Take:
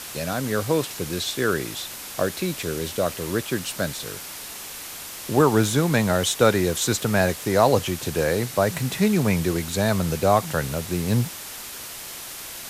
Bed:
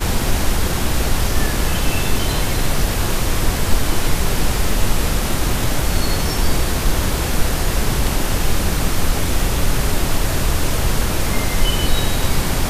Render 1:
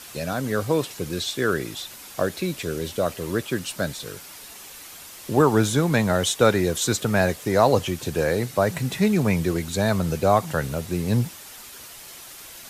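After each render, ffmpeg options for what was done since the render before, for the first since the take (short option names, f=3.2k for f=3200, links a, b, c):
-af "afftdn=nr=7:nf=-37"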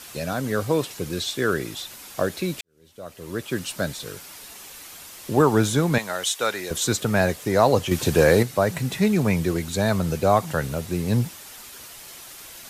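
-filter_complex "[0:a]asettb=1/sr,asplit=3[a][b][c];[a]atrim=end=5.984[d];[b]atrim=start=5.98:end=6.71,asetpts=PTS-STARTPTS,afade=t=in:d=0.004:c=qsin,afade=t=out:st=0.726:d=0.004:c=qsin,highpass=f=1.3k:p=1[e];[c]atrim=start=6.706[f];[d][e]acrossfade=d=0.004:c1=hsin:c2=qsin[g];[g][f]acrossfade=d=0.004:c1=qsin:c2=hsin,asettb=1/sr,asplit=3[h][i][j];[h]atrim=end=7.914[k];[i]atrim=start=7.91:end=8.43,asetpts=PTS-STARTPTS,afade=t=in:d=0.004:c=qsin,afade=t=out:st=0.516:d=0.004:c=qsin,acontrast=75[l];[j]atrim=start=8.426[m];[k][l]acrossfade=d=0.004:c1=hsin:c2=qsin[n];[n][m]acrossfade=d=0.004:c1=qsin:c2=hsin,asplit=2[o][p];[o]atrim=end=2.61,asetpts=PTS-STARTPTS,afade=t=out:st=2.606:d=0.004:c=hsin[q];[p]atrim=start=2.61,asetpts=PTS-STARTPTS,afade=t=in:d=0.98:c=qua[r];[q][r]concat=n=2:v=0:a=1"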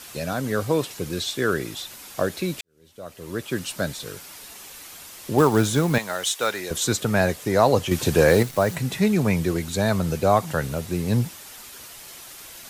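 -filter_complex "[0:a]asettb=1/sr,asplit=3[a][b][c];[a]atrim=end=5.384[d];[b]atrim=start=5.38:end=6.59,asetpts=PTS-STARTPTS,afade=t=in:d=0.004:c=qsin,afade=t=out:st=1.206:d=0.004:c=qsin,acrusher=bits=5:mode=log:mix=0:aa=0.000001[e];[c]atrim=start=6.586[f];[d][e]acrossfade=d=0.004:c1=hsin:c2=qsin[g];[g][f]acrossfade=d=0.004:c1=qsin:c2=hsin,asettb=1/sr,asplit=3[h][i][j];[h]atrim=end=8.284[k];[i]atrim=start=8.28:end=8.76,asetpts=PTS-STARTPTS,afade=t=in:d=0.004:c=qsin,afade=t=out:st=0.476:d=0.004:c=qsin,acrusher=bits=7:dc=4:mix=0:aa=0.000001[l];[j]atrim=start=8.756[m];[k][l]acrossfade=d=0.004:c1=hsin:c2=qsin[n];[n][m]acrossfade=d=0.004:c1=qsin:c2=hsin"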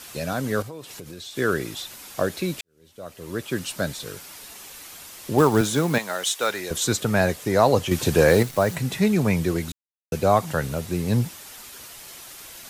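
-filter_complex "[0:a]asettb=1/sr,asplit=3[a][b][c];[a]atrim=end=0.624[d];[b]atrim=start=0.62:end=1.37,asetpts=PTS-STARTPTS,afade=t=in:d=0.004:c=qsin,afade=t=out:st=0.746:d=0.004:c=qsin,acompressor=threshold=-35dB:ratio=6:attack=3.2:release=140:knee=1:detection=peak[e];[c]atrim=start=1.366[f];[d][e]acrossfade=d=0.004:c1=hsin:c2=qsin[g];[g][f]acrossfade=d=0.004:c1=qsin:c2=hsin,asettb=1/sr,asplit=3[h][i][j];[h]atrim=end=5.614[k];[i]atrim=start=5.61:end=6.5,asetpts=PTS-STARTPTS,afade=t=in:d=0.004:c=qsin,afade=t=out:st=0.886:d=0.004:c=qsin,highpass=150[l];[j]atrim=start=6.496[m];[k][l]acrossfade=d=0.004:c1=hsin:c2=qsin[n];[n][m]acrossfade=d=0.004:c1=qsin:c2=hsin,asplit=3[o][p][q];[o]atrim=end=9.72,asetpts=PTS-STARTPTS,afade=t=out:st=9.716:d=0.004:c=hsin[r];[p]atrim=start=9.72:end=10.12,asetpts=PTS-STARTPTS,volume=0[s];[q]atrim=start=10.12,asetpts=PTS-STARTPTS,afade=t=in:d=0.004:c=hsin[t];[r][s][t]concat=n=3:v=0:a=1"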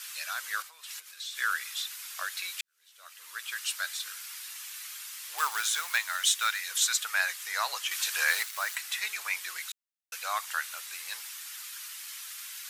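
-af "highpass=f=1.3k:w=0.5412,highpass=f=1.3k:w=1.3066"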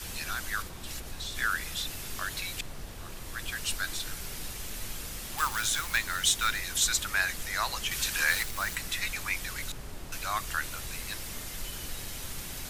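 -filter_complex "[1:a]volume=-24dB[a];[0:a][a]amix=inputs=2:normalize=0"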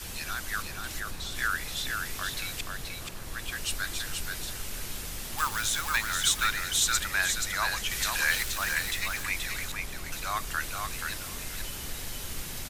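-af "aecho=1:1:479|958|1437:0.596|0.101|0.0172"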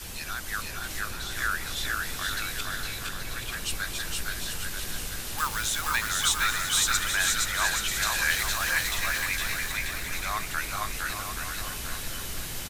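-af "aecho=1:1:460|828|1122|1358|1546:0.631|0.398|0.251|0.158|0.1"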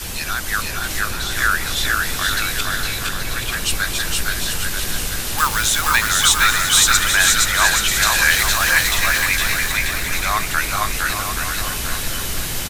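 -af "volume=11dB,alimiter=limit=-1dB:level=0:latency=1"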